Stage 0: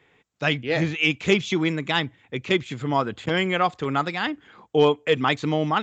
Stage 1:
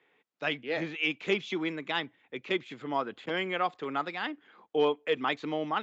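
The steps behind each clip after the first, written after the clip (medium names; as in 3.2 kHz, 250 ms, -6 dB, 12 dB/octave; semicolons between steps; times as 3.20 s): three-band isolator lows -21 dB, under 210 Hz, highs -14 dB, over 4.9 kHz; trim -7.5 dB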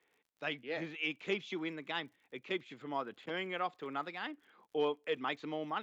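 crackle 44 per s -51 dBFS; trim -7 dB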